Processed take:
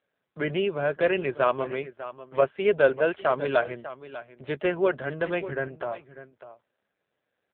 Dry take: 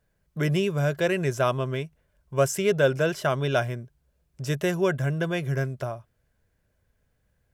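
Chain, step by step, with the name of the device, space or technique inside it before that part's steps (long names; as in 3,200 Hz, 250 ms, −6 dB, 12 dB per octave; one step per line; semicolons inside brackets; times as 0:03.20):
0:02.41–0:03.17: downward expander −24 dBFS
satellite phone (band-pass filter 330–3,100 Hz; single-tap delay 597 ms −14.5 dB; level +3 dB; AMR narrowband 5.9 kbit/s 8,000 Hz)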